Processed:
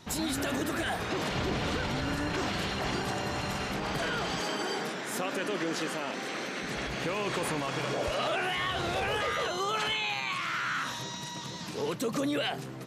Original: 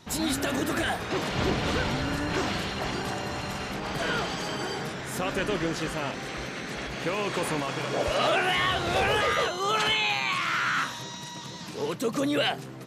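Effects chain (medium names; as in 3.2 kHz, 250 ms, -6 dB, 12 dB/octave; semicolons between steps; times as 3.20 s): 4.40–6.63 s: high-pass 190 Hz 24 dB/octave; peak limiter -22.5 dBFS, peak gain reduction 8 dB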